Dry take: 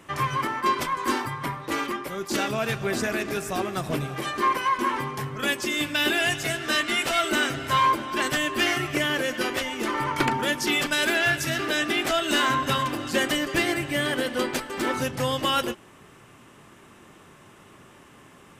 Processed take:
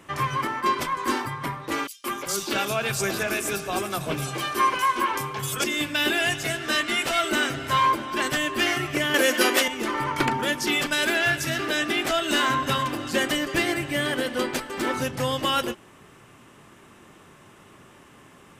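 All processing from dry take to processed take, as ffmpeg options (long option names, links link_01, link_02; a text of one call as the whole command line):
ffmpeg -i in.wav -filter_complex "[0:a]asettb=1/sr,asplit=3[link_01][link_02][link_03];[link_01]atrim=end=1.874[link_04];[link_02]atrim=start=1.87:end=5.64,asetpts=PTS-STARTPTS,afade=type=in:duration=0.004:curve=qsin,afade=type=out:start_time=3.766:duration=0.004:curve=qsin,highshelf=frequency=2300:gain=8,bandreject=frequency=1900:width=8.3,acrossover=split=230|4300[link_05][link_06][link_07];[link_06]adelay=170[link_08];[link_05]adelay=200[link_09];[link_09][link_08][link_07]amix=inputs=3:normalize=0,atrim=end_sample=166257[link_10];[link_03]atrim=start=5.636[link_11];[link_04][link_10]acrossfade=duration=0.004:curve1=hsin:curve2=qsin[link_12];[link_12][link_11]acrossfade=duration=0.004:curve1=qsin:curve2=hsin,asettb=1/sr,asplit=3[link_13][link_14][link_15];[link_13]atrim=end=9.144[link_16];[link_14]atrim=start=9.14:end=9.68,asetpts=PTS-STARTPTS,afade=type=in:duration=0.004:curve=qsin,afade=type=out:start_time=0.536:duration=0.004:curve=qsin,highshelf=frequency=6600:gain=8,acontrast=58,highpass=frequency=230:width=0.5412,highpass=frequency=230:width=1.3066[link_17];[link_15]atrim=start=9.676[link_18];[link_16][link_17]acrossfade=duration=0.004:curve1=hsin:curve2=qsin[link_19];[link_19][link_18]acrossfade=duration=0.004:curve1=qsin:curve2=hsin" out.wav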